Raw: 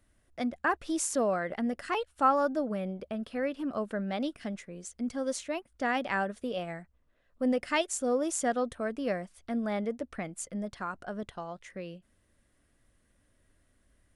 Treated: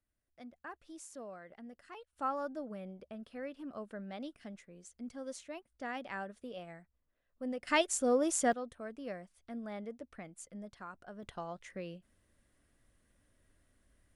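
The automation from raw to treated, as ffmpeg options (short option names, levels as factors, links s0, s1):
-af "asetnsamples=n=441:p=0,asendcmd='2.13 volume volume -11dB;7.67 volume volume -0.5dB;8.53 volume volume -11dB;11.23 volume volume -2.5dB',volume=0.112"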